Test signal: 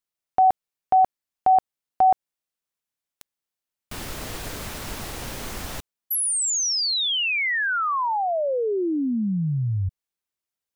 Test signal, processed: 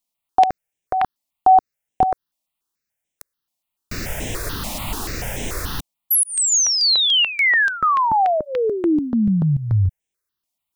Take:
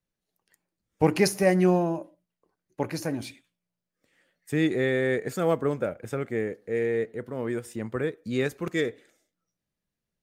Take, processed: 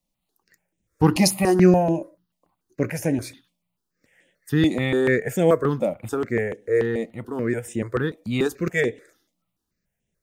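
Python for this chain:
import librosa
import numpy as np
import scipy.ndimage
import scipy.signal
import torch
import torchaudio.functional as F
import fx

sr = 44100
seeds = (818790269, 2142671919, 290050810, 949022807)

y = fx.phaser_held(x, sr, hz=6.9, low_hz=410.0, high_hz=4500.0)
y = y * 10.0 ** (8.5 / 20.0)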